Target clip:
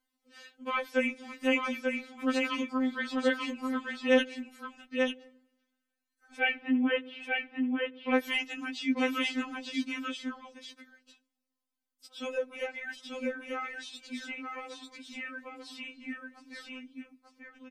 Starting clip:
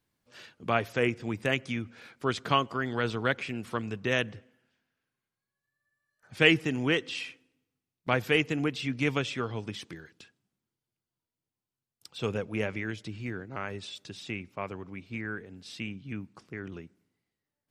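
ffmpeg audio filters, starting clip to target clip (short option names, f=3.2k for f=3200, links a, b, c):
-filter_complex "[0:a]asplit=3[a][b][c];[a]afade=t=out:st=6.36:d=0.02[d];[b]lowpass=f=2.6k:w=0.5412,lowpass=f=2.6k:w=1.3066,afade=t=in:st=6.36:d=0.02,afade=t=out:st=8.13:d=0.02[e];[c]afade=t=in:st=8.13:d=0.02[f];[d][e][f]amix=inputs=3:normalize=0,asplit=2[g][h];[h]aecho=0:1:890:0.668[i];[g][i]amix=inputs=2:normalize=0,afftfilt=real='re*3.46*eq(mod(b,12),0)':imag='im*3.46*eq(mod(b,12),0)':win_size=2048:overlap=0.75"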